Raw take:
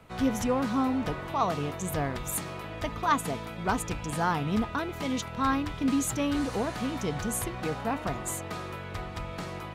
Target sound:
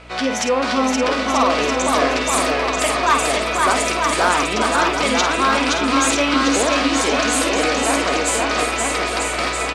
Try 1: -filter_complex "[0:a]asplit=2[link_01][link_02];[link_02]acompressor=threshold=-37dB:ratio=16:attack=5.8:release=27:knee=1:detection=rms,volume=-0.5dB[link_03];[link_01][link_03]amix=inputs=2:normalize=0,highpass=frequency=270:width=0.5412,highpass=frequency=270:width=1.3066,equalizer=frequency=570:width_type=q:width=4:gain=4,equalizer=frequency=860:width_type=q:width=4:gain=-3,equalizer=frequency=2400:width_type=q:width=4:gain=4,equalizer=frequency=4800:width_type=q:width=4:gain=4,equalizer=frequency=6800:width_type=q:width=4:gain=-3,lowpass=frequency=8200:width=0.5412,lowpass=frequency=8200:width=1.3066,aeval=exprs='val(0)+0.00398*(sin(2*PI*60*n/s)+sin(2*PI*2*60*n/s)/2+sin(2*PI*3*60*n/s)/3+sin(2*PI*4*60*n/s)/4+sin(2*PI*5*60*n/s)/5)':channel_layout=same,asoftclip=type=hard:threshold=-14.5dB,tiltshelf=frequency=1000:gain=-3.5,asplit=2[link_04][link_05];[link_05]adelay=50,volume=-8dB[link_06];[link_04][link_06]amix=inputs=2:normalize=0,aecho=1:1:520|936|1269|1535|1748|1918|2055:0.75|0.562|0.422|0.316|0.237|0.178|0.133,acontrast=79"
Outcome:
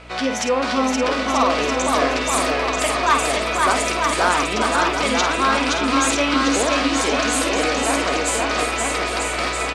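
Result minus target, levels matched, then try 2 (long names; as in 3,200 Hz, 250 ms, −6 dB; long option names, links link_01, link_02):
downward compressor: peak gain reduction +6 dB
-filter_complex "[0:a]asplit=2[link_01][link_02];[link_02]acompressor=threshold=-30.5dB:ratio=16:attack=5.8:release=27:knee=1:detection=rms,volume=-0.5dB[link_03];[link_01][link_03]amix=inputs=2:normalize=0,highpass=frequency=270:width=0.5412,highpass=frequency=270:width=1.3066,equalizer=frequency=570:width_type=q:width=4:gain=4,equalizer=frequency=860:width_type=q:width=4:gain=-3,equalizer=frequency=2400:width_type=q:width=4:gain=4,equalizer=frequency=4800:width_type=q:width=4:gain=4,equalizer=frequency=6800:width_type=q:width=4:gain=-3,lowpass=frequency=8200:width=0.5412,lowpass=frequency=8200:width=1.3066,aeval=exprs='val(0)+0.00398*(sin(2*PI*60*n/s)+sin(2*PI*2*60*n/s)/2+sin(2*PI*3*60*n/s)/3+sin(2*PI*4*60*n/s)/4+sin(2*PI*5*60*n/s)/5)':channel_layout=same,asoftclip=type=hard:threshold=-14.5dB,tiltshelf=frequency=1000:gain=-3.5,asplit=2[link_04][link_05];[link_05]adelay=50,volume=-8dB[link_06];[link_04][link_06]amix=inputs=2:normalize=0,aecho=1:1:520|936|1269|1535|1748|1918|2055:0.75|0.562|0.422|0.316|0.237|0.178|0.133,acontrast=79"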